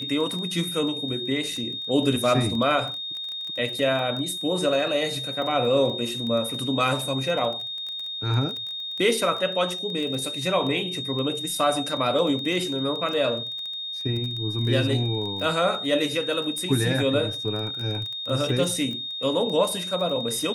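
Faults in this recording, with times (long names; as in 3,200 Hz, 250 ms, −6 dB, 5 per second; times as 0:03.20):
surface crackle 16 per second −29 dBFS
whistle 3,700 Hz −30 dBFS
0:16.58: click −19 dBFS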